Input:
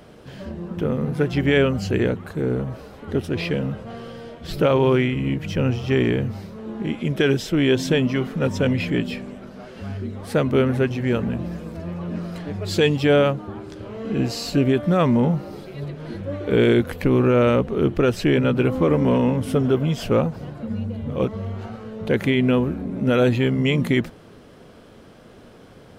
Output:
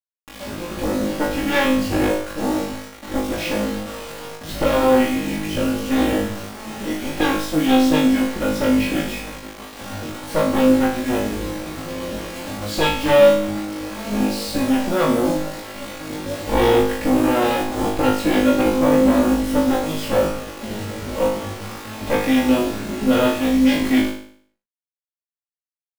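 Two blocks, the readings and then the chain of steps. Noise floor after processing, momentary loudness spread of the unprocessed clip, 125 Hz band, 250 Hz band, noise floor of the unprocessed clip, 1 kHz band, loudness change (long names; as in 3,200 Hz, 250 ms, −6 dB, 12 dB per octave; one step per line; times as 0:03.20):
below −85 dBFS, 15 LU, −8.5 dB, +3.0 dB, −46 dBFS, +7.0 dB, +1.5 dB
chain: lower of the sound and its delayed copy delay 3.6 ms
high-shelf EQ 5,500 Hz −5 dB
bit-depth reduction 6 bits, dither none
on a send: flutter between parallel walls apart 3.3 metres, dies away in 0.56 s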